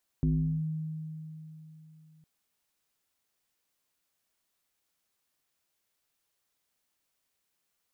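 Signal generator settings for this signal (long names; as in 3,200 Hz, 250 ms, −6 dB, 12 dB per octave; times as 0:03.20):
two-operator FM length 2.01 s, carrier 157 Hz, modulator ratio 0.63, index 1, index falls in 0.41 s linear, decay 3.44 s, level −22 dB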